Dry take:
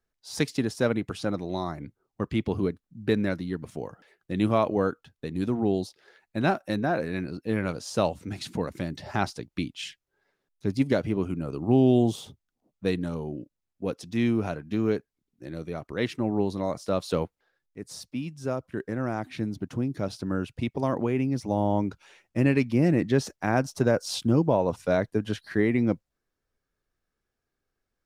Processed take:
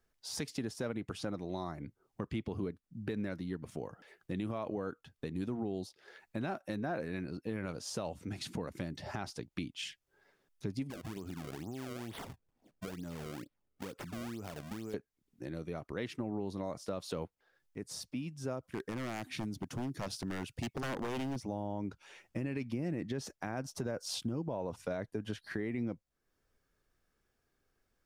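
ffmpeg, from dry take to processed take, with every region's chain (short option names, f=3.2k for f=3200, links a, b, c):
-filter_complex "[0:a]asettb=1/sr,asplit=3[a][b][c];[a]atrim=end=10.904[d];[b]atrim=start=10.9:end=14.94,asetpts=PTS-STARTPTS,afade=t=in:d=0.004:c=qsin,afade=t=out:st=4.036:d=0.004:c=qsin,acompressor=threshold=-36dB:ratio=6:attack=3.2:release=140:knee=1:detection=peak,acrusher=samples=29:mix=1:aa=0.000001:lfo=1:lforange=46.4:lforate=2.2[e];[c]atrim=start=14.936[f];[d][e]acrossfade=d=0.004:c1=hsin:c2=qsin[g];[g][f]acrossfade=d=0.004:c1=qsin:c2=hsin,asettb=1/sr,asplit=3[h][i][j];[h]atrim=end=18.634[k];[i]atrim=start=18.63:end=21.36,asetpts=PTS-STARTPTS,afade=t=in:d=0.004:c=qsin,afade=t=out:st=2.726:d=0.004:c=qsin,aeval=exprs='0.0668*(abs(mod(val(0)/0.0668+3,4)-2)-1)':c=same,highshelf=f=3.6k:g=9[l];[j]atrim=start=21.356[m];[k][l]acrossfade=d=0.004:c1=hsin:c2=qsin[n];[n][m]acrossfade=d=0.004:c1=qsin:c2=hsin,bandreject=f=4k:w=26,alimiter=limit=-17.5dB:level=0:latency=1:release=60,acompressor=threshold=-49dB:ratio=2,volume=4dB"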